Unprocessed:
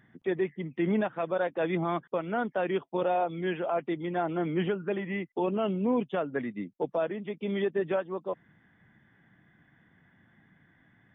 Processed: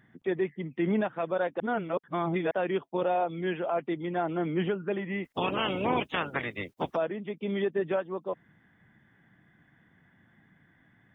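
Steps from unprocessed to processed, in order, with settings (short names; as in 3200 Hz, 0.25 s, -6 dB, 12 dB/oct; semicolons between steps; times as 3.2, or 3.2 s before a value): 1.6–2.51 reverse; 5.23–6.95 spectral limiter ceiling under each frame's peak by 27 dB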